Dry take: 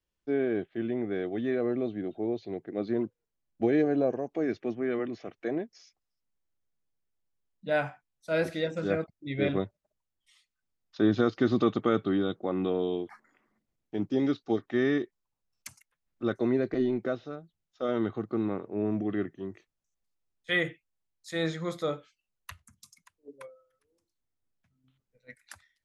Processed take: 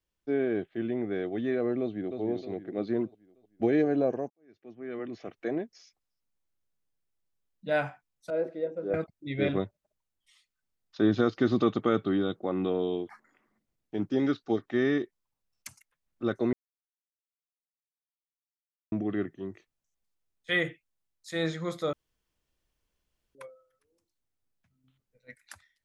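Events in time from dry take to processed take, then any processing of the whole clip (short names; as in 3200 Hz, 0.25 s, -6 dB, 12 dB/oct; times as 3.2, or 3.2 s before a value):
1.8–2.21 echo throw 0.31 s, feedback 45%, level -6.5 dB
4.3–5.25 fade in quadratic
8.3–8.94 band-pass 460 Hz, Q 1.7
13.99–14.48 bell 1500 Hz +6 dB 0.64 oct
16.53–18.92 mute
21.93–23.35 room tone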